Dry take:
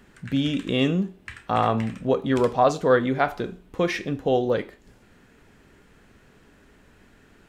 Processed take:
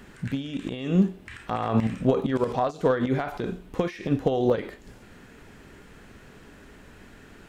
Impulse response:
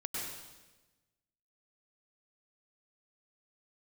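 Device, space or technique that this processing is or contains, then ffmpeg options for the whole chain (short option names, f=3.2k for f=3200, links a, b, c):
de-esser from a sidechain: -filter_complex "[0:a]asplit=2[a][b];[b]highpass=6k,apad=whole_len=330287[c];[a][c]sidechaincompress=threshold=-60dB:ratio=6:attack=2.9:release=44,volume=6dB"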